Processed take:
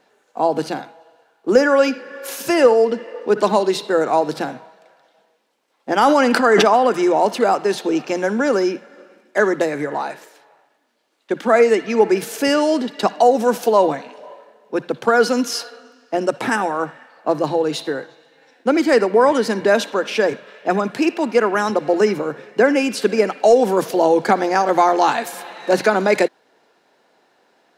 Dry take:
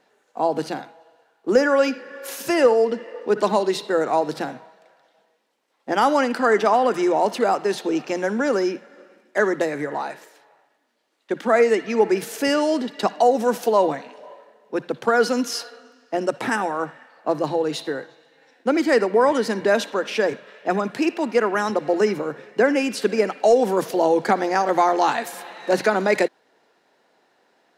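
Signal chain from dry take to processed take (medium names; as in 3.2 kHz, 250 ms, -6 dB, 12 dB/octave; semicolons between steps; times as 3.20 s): band-stop 1.9 kHz, Q 22; 5.99–6.68 s: decay stretcher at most 20 dB/s; trim +3.5 dB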